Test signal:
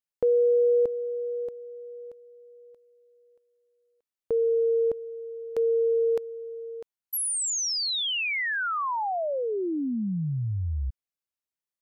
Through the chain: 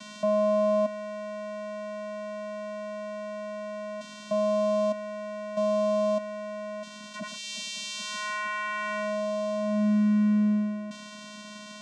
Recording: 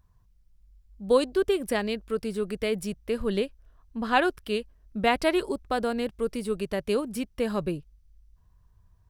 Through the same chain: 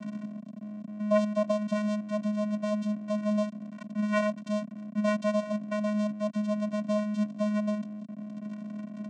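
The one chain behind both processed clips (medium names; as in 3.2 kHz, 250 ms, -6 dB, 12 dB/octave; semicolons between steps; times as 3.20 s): one-bit delta coder 64 kbps, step -27 dBFS; vocoder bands 4, square 210 Hz; high-pass 160 Hz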